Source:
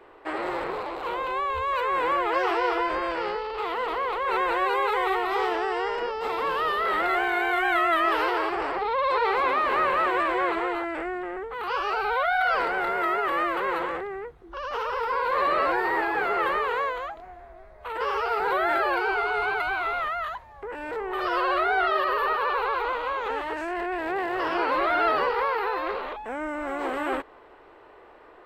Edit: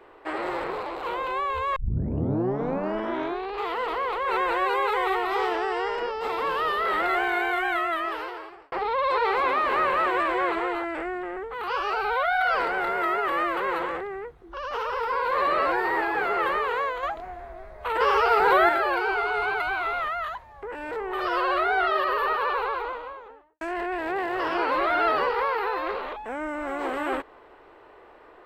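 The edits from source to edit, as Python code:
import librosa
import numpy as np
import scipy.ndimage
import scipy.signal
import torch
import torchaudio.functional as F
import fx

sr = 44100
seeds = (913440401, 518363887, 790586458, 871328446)

y = fx.studio_fade_out(x, sr, start_s=22.45, length_s=1.16)
y = fx.edit(y, sr, fx.tape_start(start_s=1.76, length_s=1.92),
    fx.fade_out_span(start_s=7.35, length_s=1.37),
    fx.clip_gain(start_s=17.03, length_s=1.66, db=6.0), tone=tone)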